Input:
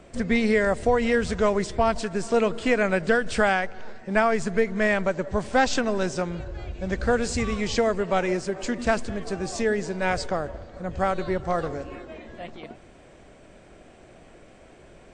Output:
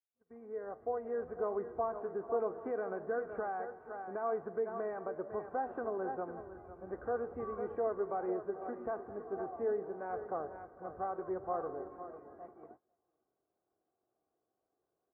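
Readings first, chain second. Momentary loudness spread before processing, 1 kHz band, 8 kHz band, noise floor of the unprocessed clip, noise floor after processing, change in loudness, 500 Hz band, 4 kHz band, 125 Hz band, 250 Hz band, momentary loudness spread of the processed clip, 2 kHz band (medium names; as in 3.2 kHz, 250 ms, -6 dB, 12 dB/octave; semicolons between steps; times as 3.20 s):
14 LU, -12.0 dB, under -40 dB, -51 dBFS, under -85 dBFS, -14.0 dB, -12.0 dB, under -40 dB, -23.5 dB, -19.0 dB, 12 LU, -23.5 dB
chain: fade-in on the opening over 1.82 s; feedback delay 772 ms, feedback 31%, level -23 dB; flange 1.3 Hz, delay 9 ms, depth 4.2 ms, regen +85%; high-pass 110 Hz 12 dB/octave; delay 502 ms -12 dB; gate -46 dBFS, range -21 dB; bass shelf 360 Hz -9 dB; peak limiter -22 dBFS, peak gain reduction 9 dB; steep low-pass 1.3 kHz 36 dB/octave; comb 2.6 ms, depth 47%; dynamic bell 530 Hz, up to +4 dB, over -42 dBFS, Q 1.1; trim -6 dB; AAC 24 kbps 24 kHz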